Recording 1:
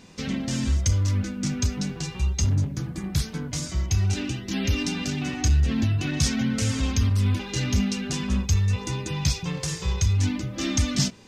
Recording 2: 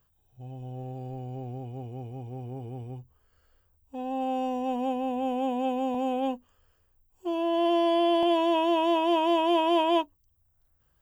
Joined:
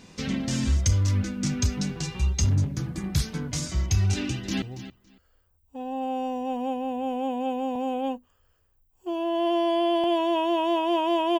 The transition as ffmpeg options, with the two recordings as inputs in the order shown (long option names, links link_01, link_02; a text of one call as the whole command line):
ffmpeg -i cue0.wav -i cue1.wav -filter_complex "[0:a]apad=whole_dur=11.39,atrim=end=11.39,atrim=end=4.622[link_01];[1:a]atrim=start=2.808:end=9.58[link_02];[link_01][link_02]acrossfade=duration=0.004:curve1=hsin:curve2=hsin,asplit=2[link_03][link_04];[link_04]afade=type=in:start_time=4.15:duration=0.01,afade=type=out:start_time=4.62:duration=0.01,aecho=0:1:280|560:0.223872|0.0335808[link_05];[link_03][link_05]amix=inputs=2:normalize=0" out.wav